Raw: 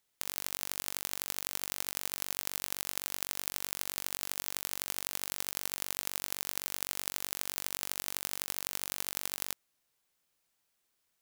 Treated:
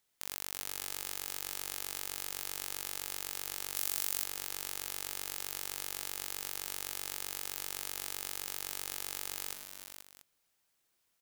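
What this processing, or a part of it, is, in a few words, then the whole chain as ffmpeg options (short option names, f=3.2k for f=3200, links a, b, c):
clipper into limiter: -filter_complex "[0:a]asoftclip=type=hard:threshold=-9.5dB,alimiter=limit=-12dB:level=0:latency=1,aecho=1:1:107|344|479|685:0.316|0.188|0.355|0.141,asettb=1/sr,asplit=3[a][b][c];[a]atrim=end=3.754[d];[b]atrim=start=3.75:end=4.24,asetpts=PTS-STARTPTS,afade=t=in:d=0.004:c=qsin,afade=t=out:st=0.486:d=0.004:c=qsin,highshelf=f=5.2k:g=7[e];[c]atrim=start=4.236[f];[d][e]acrossfade=d=0.004:c1=hsin:c2=qsin[g];[g][f]acrossfade=d=0.004:c1=qsin:c2=hsin"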